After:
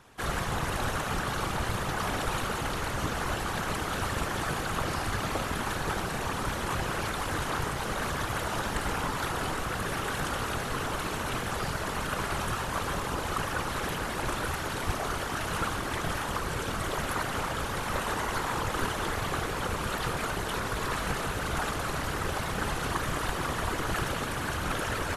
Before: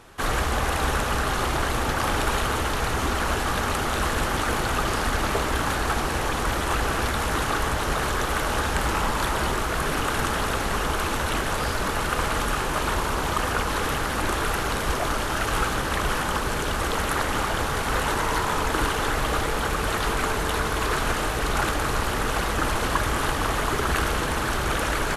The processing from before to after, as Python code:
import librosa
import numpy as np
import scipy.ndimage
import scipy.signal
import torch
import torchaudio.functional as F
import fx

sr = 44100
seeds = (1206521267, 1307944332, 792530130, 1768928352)

y = fx.whisperise(x, sr, seeds[0])
y = y * librosa.db_to_amplitude(-6.5)